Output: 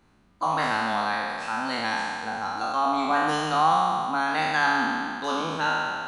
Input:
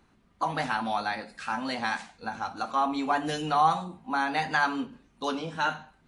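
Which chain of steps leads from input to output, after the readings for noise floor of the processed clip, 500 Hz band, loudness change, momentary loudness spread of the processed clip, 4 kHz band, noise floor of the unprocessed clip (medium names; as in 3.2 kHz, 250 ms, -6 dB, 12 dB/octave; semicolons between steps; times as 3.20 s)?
-61 dBFS, +4.0 dB, +4.0 dB, 7 LU, +5.0 dB, -64 dBFS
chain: spectral sustain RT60 2.25 s; trim -1 dB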